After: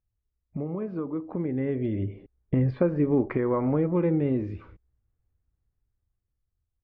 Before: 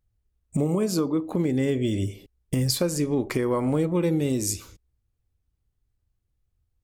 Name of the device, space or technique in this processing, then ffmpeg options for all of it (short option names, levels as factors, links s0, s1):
action camera in a waterproof case: -filter_complex "[0:a]acrossover=split=4700[s0][s1];[s1]acompressor=threshold=0.01:ratio=4:attack=1:release=60[s2];[s0][s2]amix=inputs=2:normalize=0,asettb=1/sr,asplit=3[s3][s4][s5];[s3]atrim=end=2.114[s6];[s4]atrim=start=2.11:end=3.26,asetpts=PTS-STARTPTS,afade=t=in:d=0.004:c=qsin,afade=t=out:st=1.146:d=0.004:c=qsin,equalizer=f=310:w=0.37:g=3[s7];[s5]atrim=start=3.256[s8];[s6][s7]acrossfade=d=0.004:c1=hsin:c2=qsin[s9];[s9][s8]acrossfade=d=0.004:c1=qsin:c2=hsin,lowpass=f=2000:w=0.5412,lowpass=f=2000:w=1.3066,dynaudnorm=f=370:g=9:m=3.55,volume=0.376" -ar 48000 -c:a aac -b:a 96k